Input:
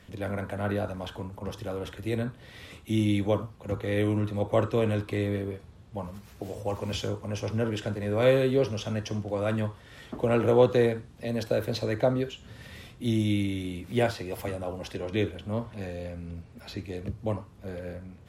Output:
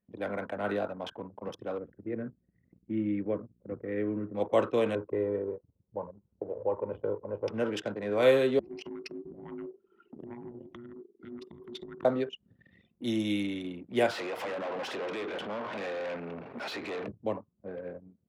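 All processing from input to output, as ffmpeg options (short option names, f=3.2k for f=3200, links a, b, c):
-filter_complex "[0:a]asettb=1/sr,asplit=3[a][b][c];[a]atrim=end=1.784[d];[b]atrim=start=1.78:end=4.35,asetpts=PTS-STARTPTS,afade=t=in:d=0.004:c=qsin,afade=t=out:st=2.566:d=0.004:c=qsin,lowpass=f=1.9k:w=0.5412,lowpass=f=1.9k:w=1.3066,aeval=exprs='val(0)+0.00316*(sin(2*PI*60*n/s)+sin(2*PI*2*60*n/s)/2+sin(2*PI*3*60*n/s)/3+sin(2*PI*4*60*n/s)/4+sin(2*PI*5*60*n/s)/5)':c=same,equalizer=f=870:t=o:w=1.2:g=-13.5[e];[c]atrim=start=4.346[f];[d][e]acrossfade=d=0.004:c1=hsin:c2=qsin[g];[g][f]acrossfade=d=0.004:c1=qsin:c2=hsin,asettb=1/sr,asplit=3[h][i][j];[h]atrim=end=4.954[k];[i]atrim=start=4.95:end=7.48,asetpts=PTS-STARTPTS,afade=t=in:d=0.004:c=qsin,afade=t=out:st=2.526:d=0.004:c=qsin,lowpass=1k,aecho=1:1:2.1:0.54,atrim=end_sample=111573[l];[j]atrim=start=7.476[m];[k][l]acrossfade=d=0.004:c1=hsin:c2=qsin[n];[n][m]acrossfade=d=0.004:c1=qsin:c2=hsin,asettb=1/sr,asplit=3[o][p][q];[o]atrim=end=8.594[r];[p]atrim=start=8.59:end=12.05,asetpts=PTS-STARTPTS,afade=t=in:d=0.004:c=qsin,afade=t=out:st=3.456:d=0.004:c=qsin,acompressor=threshold=-35dB:ratio=5:attack=3.2:release=140:knee=1:detection=peak,afreqshift=-480[s];[q]atrim=start=12.046[t];[r][s]acrossfade=d=0.004:c1=hsin:c2=qsin[u];[u][t]acrossfade=d=0.004:c1=qsin:c2=hsin,asettb=1/sr,asplit=3[v][w][x];[v]atrim=end=14.114[y];[w]atrim=start=14.11:end=17.07,asetpts=PTS-STARTPTS,afade=t=in:d=0.004:c=qsin,afade=t=out:st=2.956:d=0.004:c=qsin,acompressor=threshold=-36dB:ratio=6:attack=3.2:release=140:knee=1:detection=peak,asplit=2[z][aa];[aa]highpass=f=720:p=1,volume=31dB,asoftclip=type=tanh:threshold=-27.5dB[ab];[z][ab]amix=inputs=2:normalize=0,lowpass=f=2.4k:p=1,volume=-6dB[ac];[x]atrim=start=17.066[ad];[y][ac]acrossfade=d=0.004:c1=hsin:c2=qsin[ae];[ae][ad]acrossfade=d=0.004:c1=qsin:c2=hsin,anlmdn=1,highpass=250"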